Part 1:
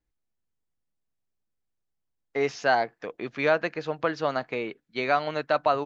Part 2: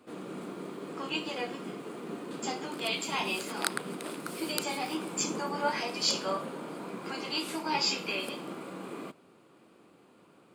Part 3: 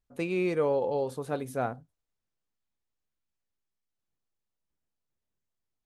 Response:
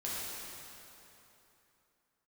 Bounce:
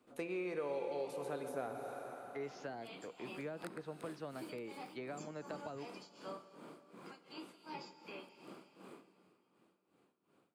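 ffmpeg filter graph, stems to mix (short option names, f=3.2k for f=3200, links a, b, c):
-filter_complex "[0:a]acrossover=split=390[a][b];[b]acompressor=threshold=-33dB:ratio=6[c];[a][c]amix=inputs=2:normalize=0,volume=-12dB[d];[1:a]tremolo=f=2.7:d=0.98,volume=-13dB,asplit=2[e][f];[f]volume=-15.5dB[g];[2:a]highpass=f=650:p=1,volume=-1.5dB,asplit=3[h][i][j];[i]volume=-7.5dB[k];[j]apad=whole_len=465240[l];[e][l]sidechaincompress=threshold=-50dB:ratio=8:attack=16:release=1010[m];[3:a]atrim=start_sample=2205[n];[g][k]amix=inputs=2:normalize=0[o];[o][n]afir=irnorm=-1:irlink=0[p];[d][m][h][p]amix=inputs=4:normalize=0,acrossover=split=570|1900[q][r][s];[q]acompressor=threshold=-41dB:ratio=4[t];[r]acompressor=threshold=-48dB:ratio=4[u];[s]acompressor=threshold=-58dB:ratio=4[v];[t][u][v]amix=inputs=3:normalize=0"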